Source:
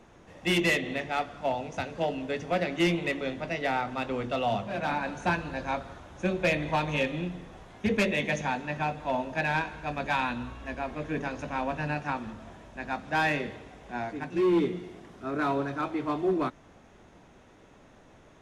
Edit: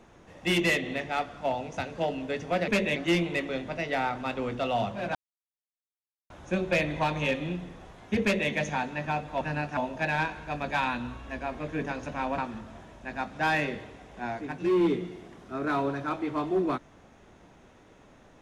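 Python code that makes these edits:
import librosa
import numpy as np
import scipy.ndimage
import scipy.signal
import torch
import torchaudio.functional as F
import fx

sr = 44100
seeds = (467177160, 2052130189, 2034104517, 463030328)

y = fx.edit(x, sr, fx.silence(start_s=4.87, length_s=1.15),
    fx.duplicate(start_s=7.94, length_s=0.28, to_s=2.68),
    fx.move(start_s=11.74, length_s=0.36, to_s=9.13), tone=tone)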